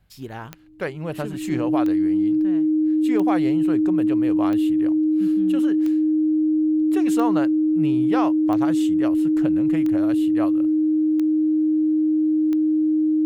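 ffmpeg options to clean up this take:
-af "adeclick=t=4,bandreject=f=48.3:t=h:w=4,bandreject=f=96.6:t=h:w=4,bandreject=f=144.9:t=h:w=4,bandreject=f=193.2:t=h:w=4,bandreject=f=241.5:t=h:w=4,bandreject=f=310:w=30"

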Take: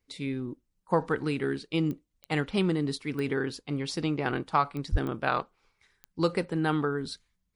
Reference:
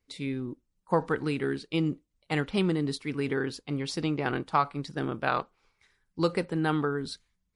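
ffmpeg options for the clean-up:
-filter_complex "[0:a]adeclick=t=4,asplit=3[s0][s1][s2];[s0]afade=t=out:st=4.91:d=0.02[s3];[s1]highpass=f=140:w=0.5412,highpass=f=140:w=1.3066,afade=t=in:st=4.91:d=0.02,afade=t=out:st=5.03:d=0.02[s4];[s2]afade=t=in:st=5.03:d=0.02[s5];[s3][s4][s5]amix=inputs=3:normalize=0"

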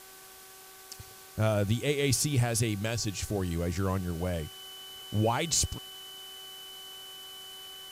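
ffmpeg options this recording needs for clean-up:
-af "adeclick=t=4,bandreject=f=380.8:t=h:w=4,bandreject=f=761.6:t=h:w=4,bandreject=f=1142.4:t=h:w=4,bandreject=f=1523.2:t=h:w=4,bandreject=f=3000:w=30,afftdn=nr=25:nf=-50"

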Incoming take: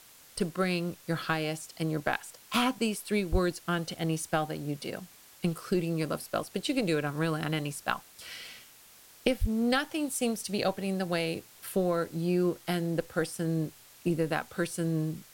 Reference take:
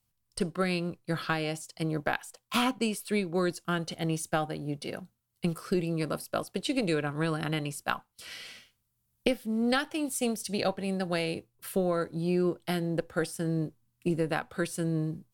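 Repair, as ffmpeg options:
-filter_complex "[0:a]asplit=3[s0][s1][s2];[s0]afade=t=out:st=3.31:d=0.02[s3];[s1]highpass=f=140:w=0.5412,highpass=f=140:w=1.3066,afade=t=in:st=3.31:d=0.02,afade=t=out:st=3.43:d=0.02[s4];[s2]afade=t=in:st=3.43:d=0.02[s5];[s3][s4][s5]amix=inputs=3:normalize=0,asplit=3[s6][s7][s8];[s6]afade=t=out:st=9.4:d=0.02[s9];[s7]highpass=f=140:w=0.5412,highpass=f=140:w=1.3066,afade=t=in:st=9.4:d=0.02,afade=t=out:st=9.52:d=0.02[s10];[s8]afade=t=in:st=9.52:d=0.02[s11];[s9][s10][s11]amix=inputs=3:normalize=0,afwtdn=0.002"

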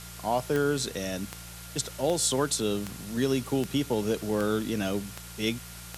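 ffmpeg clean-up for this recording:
-af "adeclick=t=4,bandreject=f=57.7:t=h:w=4,bandreject=f=115.4:t=h:w=4,bandreject=f=173.1:t=h:w=4,bandreject=f=1400:w=30,afwtdn=0.0063"

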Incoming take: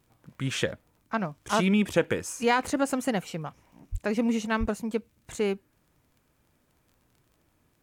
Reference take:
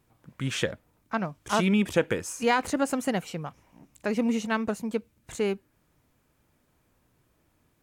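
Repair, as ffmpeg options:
-filter_complex "[0:a]adeclick=t=4,asplit=3[s0][s1][s2];[s0]afade=t=out:st=3.91:d=0.02[s3];[s1]highpass=f=140:w=0.5412,highpass=f=140:w=1.3066,afade=t=in:st=3.91:d=0.02,afade=t=out:st=4.03:d=0.02[s4];[s2]afade=t=in:st=4.03:d=0.02[s5];[s3][s4][s5]amix=inputs=3:normalize=0,asplit=3[s6][s7][s8];[s6]afade=t=out:st=4.59:d=0.02[s9];[s7]highpass=f=140:w=0.5412,highpass=f=140:w=1.3066,afade=t=in:st=4.59:d=0.02,afade=t=out:st=4.71:d=0.02[s10];[s8]afade=t=in:st=4.71:d=0.02[s11];[s9][s10][s11]amix=inputs=3:normalize=0"

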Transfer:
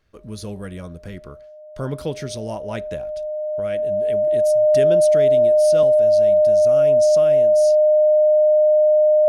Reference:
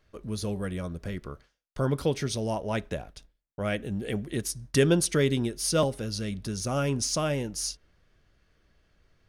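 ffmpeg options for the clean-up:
-af "bandreject=f=610:w=30,asetnsamples=n=441:p=0,asendcmd='3.6 volume volume 4.5dB',volume=1"

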